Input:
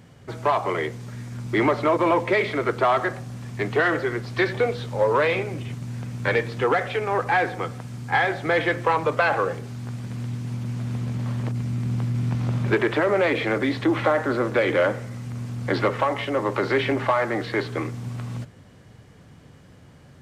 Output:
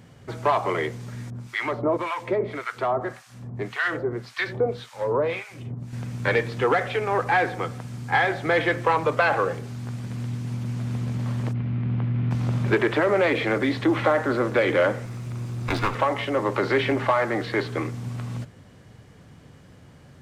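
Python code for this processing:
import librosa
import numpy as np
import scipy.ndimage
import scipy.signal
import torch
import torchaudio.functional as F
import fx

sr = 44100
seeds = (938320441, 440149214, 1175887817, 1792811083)

y = fx.harmonic_tremolo(x, sr, hz=1.8, depth_pct=100, crossover_hz=1000.0, at=(1.3, 5.93))
y = fx.lowpass(y, sr, hz=3100.0, slope=24, at=(11.53, 12.31))
y = fx.lower_of_two(y, sr, delay_ms=0.82, at=(15.05, 15.95))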